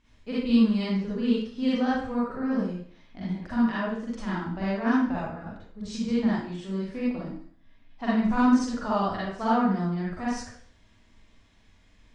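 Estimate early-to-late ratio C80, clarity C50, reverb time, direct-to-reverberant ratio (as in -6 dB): 2.5 dB, -3.5 dB, 0.55 s, -8.5 dB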